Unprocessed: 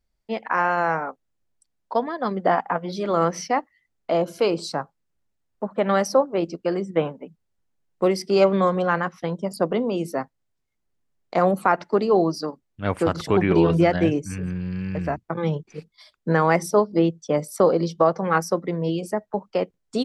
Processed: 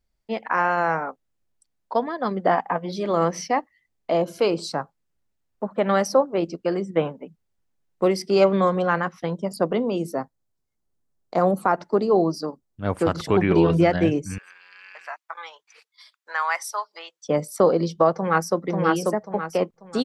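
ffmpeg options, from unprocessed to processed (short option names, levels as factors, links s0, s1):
-filter_complex "[0:a]asettb=1/sr,asplit=3[s0][s1][s2];[s0]atrim=end=2.544[s3];[s1]atrim=start=2.54:end=4.3,asetpts=PTS-STARTPTS,afade=t=in:d=0.004:c=qsin,afade=t=out:st=1.756:d=0.004:c=qsin,bandreject=f=1400:w=8.3[s4];[s2]atrim=start=4.296[s5];[s3][s4]acrossfade=d=0.004:c1=hsin:c2=qsin[s6];[s6][s5]acrossfade=d=0.004:c1=qsin:c2=hsin,asettb=1/sr,asplit=3[s7][s8][s9];[s7]atrim=end=9.984[s10];[s8]atrim=start=9.98:end=13.01,asetpts=PTS-STARTPTS,afade=t=in:d=0.004:c=qsin,afade=t=out:st=3.026:d=0.004:c=qsin,equalizer=f=2400:t=o:w=1.3:g=-8[s11];[s9]atrim=start=13.006[s12];[s10][s11]acrossfade=d=0.004:c1=hsin:c2=qsin[s13];[s13][s12]acrossfade=d=0.004:c1=qsin:c2=hsin,asettb=1/sr,asplit=3[s14][s15][s16];[s14]atrim=end=14.384[s17];[s15]atrim=start=14.38:end=17.25,asetpts=PTS-STARTPTS,afade=t=in:d=0.004:c=qsin,afade=t=out:st=2.866:d=0.004:c=qsin,highpass=f=950:w=0.5412,highpass=f=950:w=1.3066[s18];[s16]atrim=start=17.246[s19];[s17][s18]acrossfade=d=0.004:c1=hsin:c2=qsin[s20];[s20][s19]acrossfade=d=0.004:c1=qsin:c2=hsin,asplit=2[s21][s22];[s22]afade=t=in:st=18.14:d=0.01,afade=t=out:st=18.62:d=0.01,aecho=0:1:540|1080|1620|2160|2700:0.841395|0.294488|0.103071|0.0360748|0.0126262[s23];[s21][s23]amix=inputs=2:normalize=0"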